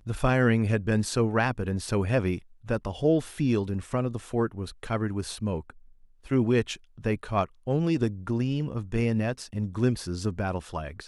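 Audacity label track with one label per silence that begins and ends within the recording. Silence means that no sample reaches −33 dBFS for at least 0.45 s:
5.700000	6.310000	silence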